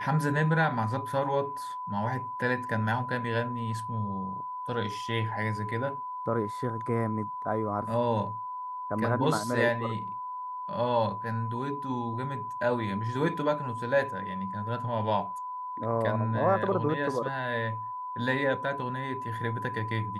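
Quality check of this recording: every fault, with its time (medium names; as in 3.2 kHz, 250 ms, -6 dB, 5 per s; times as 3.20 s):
whine 1 kHz -34 dBFS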